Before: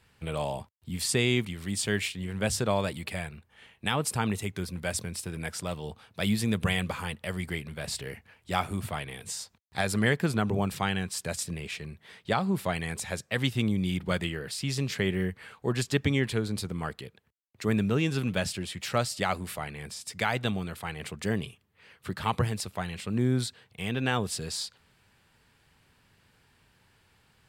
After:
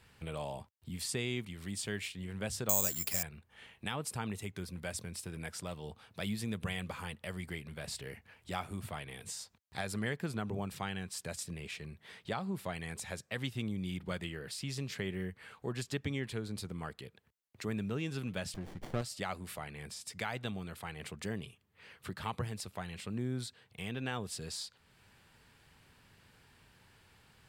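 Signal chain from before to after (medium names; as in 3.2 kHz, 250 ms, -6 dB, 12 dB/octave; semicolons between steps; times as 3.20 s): compression 1.5:1, threshold -55 dBFS, peak gain reduction 12.5 dB; 2.69–3.23 s: careless resampling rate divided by 6×, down none, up zero stuff; 18.54–19.02 s: sliding maximum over 33 samples; trim +1 dB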